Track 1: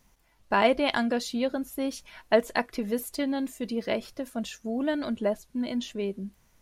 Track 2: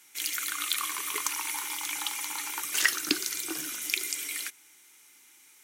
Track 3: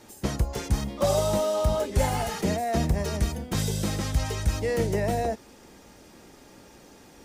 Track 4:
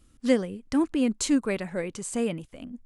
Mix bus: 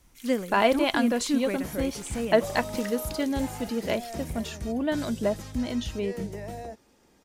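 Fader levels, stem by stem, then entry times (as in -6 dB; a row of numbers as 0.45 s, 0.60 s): +0.5 dB, -16.5 dB, -11.5 dB, -4.0 dB; 0.00 s, 0.00 s, 1.40 s, 0.00 s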